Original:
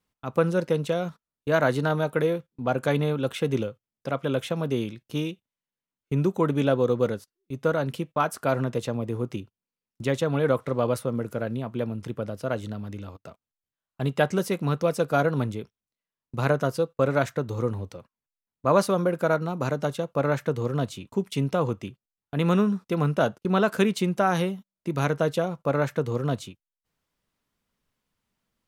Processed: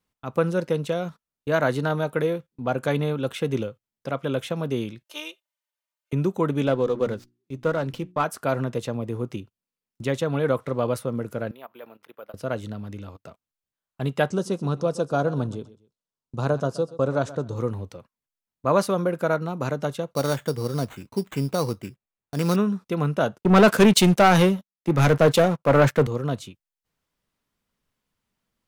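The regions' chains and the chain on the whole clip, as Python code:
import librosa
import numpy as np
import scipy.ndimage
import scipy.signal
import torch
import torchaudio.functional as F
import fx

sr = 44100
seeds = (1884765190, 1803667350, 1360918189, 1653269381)

y = fx.chain(x, sr, fx.highpass(hz=540.0, slope=24),
    fx.comb(ms=3.3, depth=0.94), at=(5.04, 6.13))
y = fx.chain(y, sr, fx.lowpass(hz=11000.0, slope=12),
    fx.hum_notches(base_hz=60, count=6),
    fx.running_max(window=3), at=(6.67, 8.24))
y = fx.chain(y, sr, fx.level_steps(step_db=16),
    fx.bandpass_edges(low_hz=670.0, high_hz=3600.0),
    fx.resample_bad(factor=3, down='none', up='hold'), at=(11.51, 12.34))
y = fx.chain(y, sr, fx.lowpass(hz=9100.0, slope=24),
    fx.peak_eq(hz=2100.0, db=-14.5, octaves=0.69),
    fx.echo_feedback(ms=127, feedback_pct=26, wet_db=-17.0), at=(14.3, 17.56))
y = fx.chain(y, sr, fx.high_shelf(hz=4300.0, db=-8.5),
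    fx.sample_hold(seeds[0], rate_hz=5100.0, jitter_pct=0), at=(20.11, 22.56))
y = fx.chain(y, sr, fx.leveller(passes=3),
    fx.band_widen(depth_pct=70), at=(23.41, 26.07))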